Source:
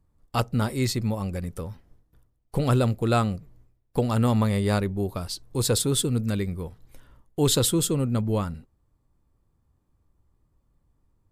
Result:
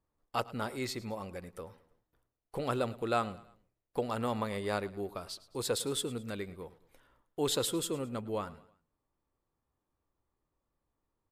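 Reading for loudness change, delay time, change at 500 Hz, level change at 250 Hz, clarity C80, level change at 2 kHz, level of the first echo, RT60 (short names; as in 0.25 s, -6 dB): -10.5 dB, 0.107 s, -7.0 dB, -12.5 dB, none, -6.0 dB, -19.0 dB, none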